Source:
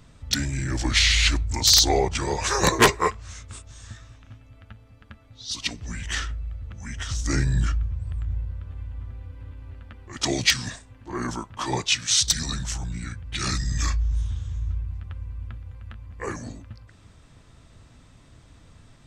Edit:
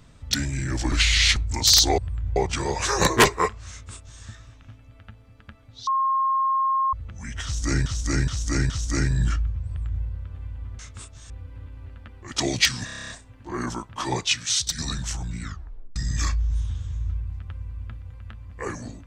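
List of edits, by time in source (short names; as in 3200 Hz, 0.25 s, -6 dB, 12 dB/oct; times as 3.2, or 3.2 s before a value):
0.92–1.36 reverse
3.33–3.84 copy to 9.15
5.49–6.55 bleep 1070 Hz -19 dBFS
7.06–7.48 loop, 4 plays
8.02–8.4 copy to 1.98
10.7 stutter 0.03 s, 9 plays
11.85–12.39 fade out, to -7 dB
13.04 tape stop 0.53 s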